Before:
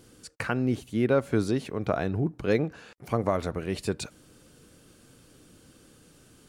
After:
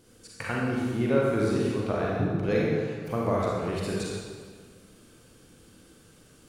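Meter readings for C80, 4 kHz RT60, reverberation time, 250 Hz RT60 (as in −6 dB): 0.0 dB, 1.4 s, 1.7 s, 1.8 s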